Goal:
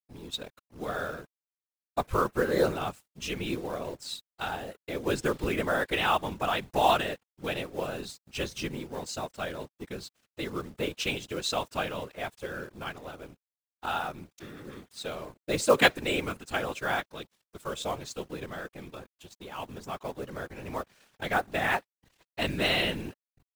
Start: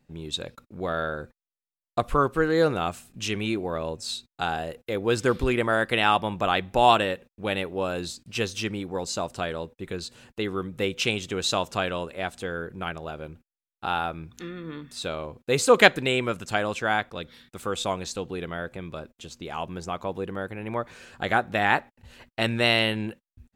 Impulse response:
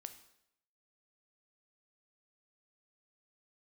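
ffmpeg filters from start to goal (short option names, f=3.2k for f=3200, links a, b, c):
-af "acrusher=bits=5:mode=log:mix=0:aa=0.000001,aeval=exprs='sgn(val(0))*max(abs(val(0))-0.00531,0)':c=same,afftfilt=real='hypot(re,im)*cos(2*PI*random(0))':imag='hypot(re,im)*sin(2*PI*random(1))':win_size=512:overlap=0.75,volume=1.5dB"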